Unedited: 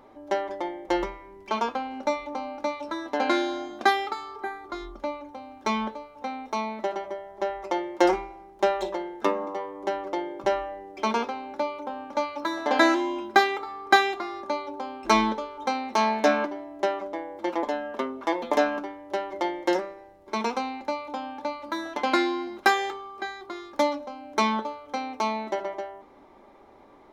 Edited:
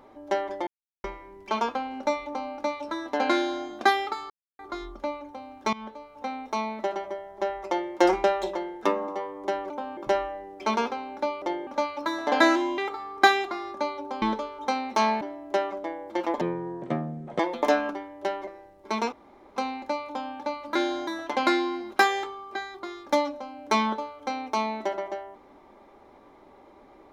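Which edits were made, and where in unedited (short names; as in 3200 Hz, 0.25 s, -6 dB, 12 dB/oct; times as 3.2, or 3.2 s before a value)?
0.67–1.04 mute
3.33–3.65 copy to 21.74
4.3–4.59 mute
5.73–6.17 fade in, from -18.5 dB
8.24–8.63 cut
10.09–10.34 swap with 11.79–12.06
13.17–13.47 cut
14.91–15.21 cut
16.2–16.5 cut
17.7–18.28 speed 59%
19.36–19.9 cut
20.55 insert room tone 0.44 s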